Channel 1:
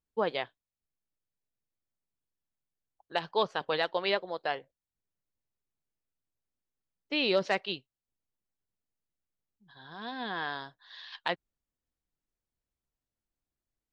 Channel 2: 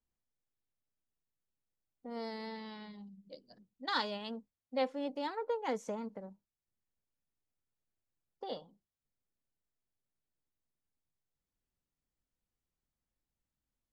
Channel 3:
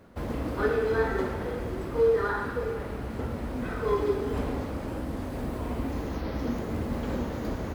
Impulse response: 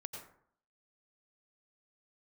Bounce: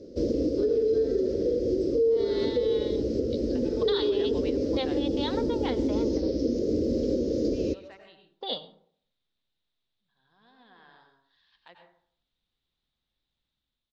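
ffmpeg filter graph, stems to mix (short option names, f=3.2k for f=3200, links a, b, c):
-filter_complex "[0:a]adelay=400,volume=-10dB,asplit=2[a][b];[b]volume=-8dB[c];[1:a]dynaudnorm=f=900:g=3:m=5.5dB,lowpass=f=3.7k:t=q:w=7,volume=-2dB,asplit=3[d][e][f];[e]volume=-9dB[g];[2:a]firequalizer=gain_entry='entry(180,0);entry(310,14);entry(530,13);entry(810,-24);entry(5200,15);entry(9500,-18)':delay=0.05:min_phase=1,volume=-0.5dB,asplit=2[h][i];[i]volume=-16dB[j];[f]apad=whole_len=631635[k];[a][k]sidechaingate=range=-33dB:threshold=-52dB:ratio=16:detection=peak[l];[3:a]atrim=start_sample=2205[m];[c][g][j]amix=inputs=3:normalize=0[n];[n][m]afir=irnorm=-1:irlink=0[o];[l][d][h][o]amix=inputs=4:normalize=0,alimiter=limit=-17.5dB:level=0:latency=1:release=252"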